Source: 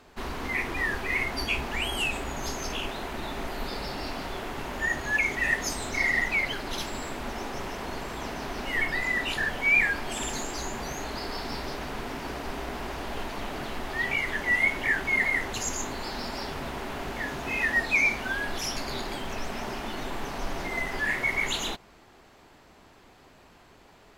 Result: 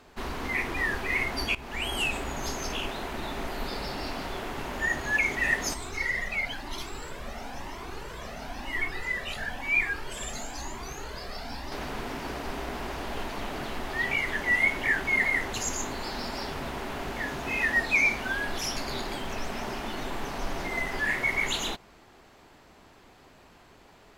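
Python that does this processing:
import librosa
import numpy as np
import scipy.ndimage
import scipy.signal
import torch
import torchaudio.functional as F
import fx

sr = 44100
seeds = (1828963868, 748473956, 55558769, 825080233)

y = fx.comb_cascade(x, sr, direction='rising', hz=1.0, at=(5.74, 11.72))
y = fx.edit(y, sr, fx.fade_in_from(start_s=1.55, length_s=0.5, curve='qsin', floor_db=-16.5), tone=tone)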